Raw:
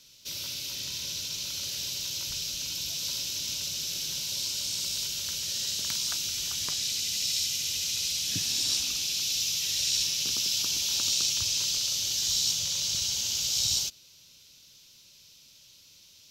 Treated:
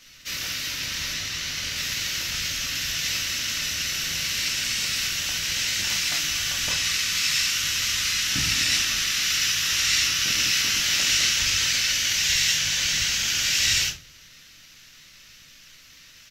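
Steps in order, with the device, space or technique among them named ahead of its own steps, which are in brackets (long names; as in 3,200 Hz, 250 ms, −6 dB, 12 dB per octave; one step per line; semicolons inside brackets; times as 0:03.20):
0:01.13–0:01.76: high-shelf EQ 8,800 Hz −6 dB
rectangular room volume 260 cubic metres, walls furnished, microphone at 2.5 metres
octave pedal (pitch-shifted copies added −12 semitones −2 dB)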